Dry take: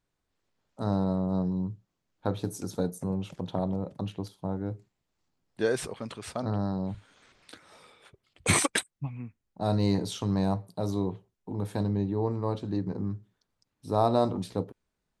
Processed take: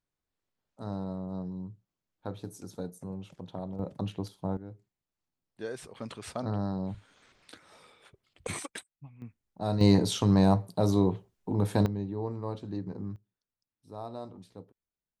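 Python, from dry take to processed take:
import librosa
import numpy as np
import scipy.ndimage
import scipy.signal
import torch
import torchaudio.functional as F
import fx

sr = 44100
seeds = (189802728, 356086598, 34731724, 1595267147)

y = fx.gain(x, sr, db=fx.steps((0.0, -8.5), (3.79, 0.0), (4.57, -11.0), (5.95, -2.0), (8.47, -14.0), (9.22, -3.0), (9.81, 5.0), (11.86, -5.5), (13.16, -16.5)))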